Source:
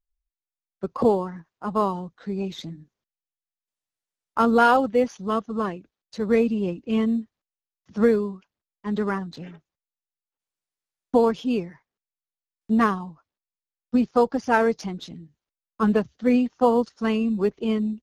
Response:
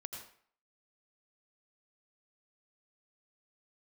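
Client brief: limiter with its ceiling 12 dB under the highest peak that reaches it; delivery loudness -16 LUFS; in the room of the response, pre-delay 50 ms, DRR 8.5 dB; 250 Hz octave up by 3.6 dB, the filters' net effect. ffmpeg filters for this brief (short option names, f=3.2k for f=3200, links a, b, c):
-filter_complex "[0:a]equalizer=f=250:t=o:g=4,alimiter=limit=-16.5dB:level=0:latency=1,asplit=2[a][b];[1:a]atrim=start_sample=2205,adelay=50[c];[b][c]afir=irnorm=-1:irlink=0,volume=-6dB[d];[a][d]amix=inputs=2:normalize=0,volume=10.5dB"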